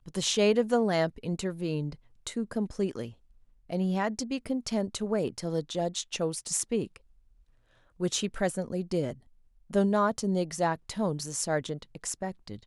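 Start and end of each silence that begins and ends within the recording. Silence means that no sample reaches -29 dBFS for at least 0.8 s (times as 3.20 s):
6.84–8.01 s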